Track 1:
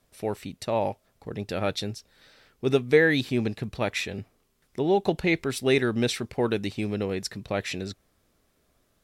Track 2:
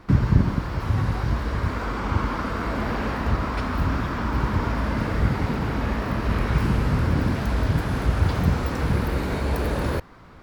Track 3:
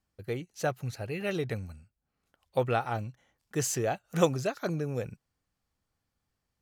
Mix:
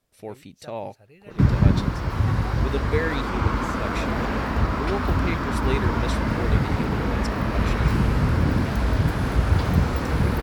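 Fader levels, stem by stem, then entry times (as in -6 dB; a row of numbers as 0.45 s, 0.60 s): -6.5 dB, +1.0 dB, -16.5 dB; 0.00 s, 1.30 s, 0.00 s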